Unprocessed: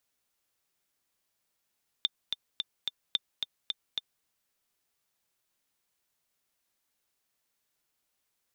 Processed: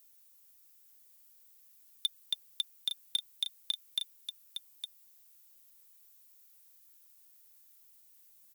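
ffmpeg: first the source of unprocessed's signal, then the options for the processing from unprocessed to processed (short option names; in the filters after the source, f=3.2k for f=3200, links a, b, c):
-f lavfi -i "aevalsrc='pow(10,(-13-5*gte(mod(t,4*60/218),60/218))/20)*sin(2*PI*3580*mod(t,60/218))*exp(-6.91*mod(t,60/218)/0.03)':d=2.2:s=44100"
-filter_complex "[0:a]aemphasis=mode=production:type=75fm,volume=22.5dB,asoftclip=hard,volume=-22.5dB,asplit=2[a][b];[b]aecho=0:1:861:0.422[c];[a][c]amix=inputs=2:normalize=0"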